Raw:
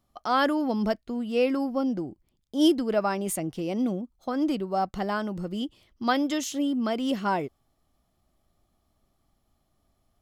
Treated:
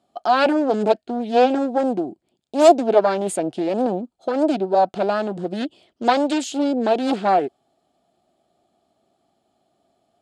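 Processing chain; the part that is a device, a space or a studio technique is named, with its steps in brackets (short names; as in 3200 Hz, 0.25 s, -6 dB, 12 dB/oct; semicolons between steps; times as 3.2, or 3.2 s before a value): full-range speaker at full volume (Doppler distortion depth 0.81 ms; speaker cabinet 220–8700 Hz, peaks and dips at 380 Hz +4 dB, 700 Hz +8 dB, 1100 Hz -8 dB, 2000 Hz -7 dB, 5800 Hz -10 dB); gain +7 dB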